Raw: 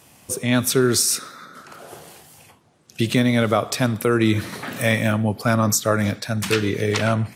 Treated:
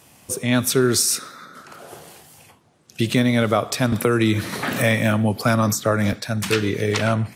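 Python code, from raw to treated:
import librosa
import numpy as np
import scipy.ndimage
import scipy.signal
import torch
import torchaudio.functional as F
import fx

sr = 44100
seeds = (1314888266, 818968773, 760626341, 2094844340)

y = fx.band_squash(x, sr, depth_pct=70, at=(3.92, 6.13))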